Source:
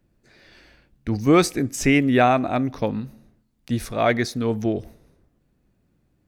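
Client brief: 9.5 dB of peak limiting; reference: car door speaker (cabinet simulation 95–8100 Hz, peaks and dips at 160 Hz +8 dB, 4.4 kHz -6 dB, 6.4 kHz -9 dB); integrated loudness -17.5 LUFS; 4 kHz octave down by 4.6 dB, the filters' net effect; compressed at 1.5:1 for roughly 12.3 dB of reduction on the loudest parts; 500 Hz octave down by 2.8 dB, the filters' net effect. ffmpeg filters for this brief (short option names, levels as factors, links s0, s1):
-af "equalizer=f=500:t=o:g=-4,equalizer=f=4000:t=o:g=-3,acompressor=threshold=0.00355:ratio=1.5,alimiter=level_in=1.41:limit=0.0631:level=0:latency=1,volume=0.708,highpass=95,equalizer=f=160:t=q:w=4:g=8,equalizer=f=4400:t=q:w=4:g=-6,equalizer=f=6400:t=q:w=4:g=-9,lowpass=f=8100:w=0.5412,lowpass=f=8100:w=1.3066,volume=10"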